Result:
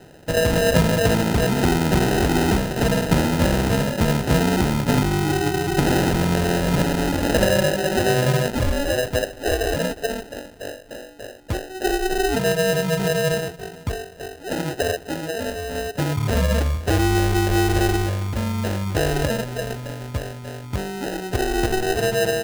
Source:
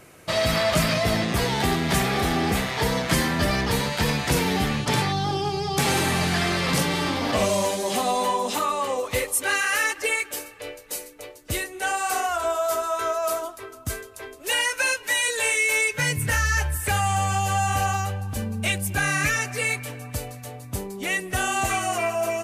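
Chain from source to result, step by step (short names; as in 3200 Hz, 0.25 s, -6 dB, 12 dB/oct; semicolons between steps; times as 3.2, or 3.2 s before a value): steep low-pass 1700 Hz 48 dB/oct; sample-and-hold 39×; gain +5 dB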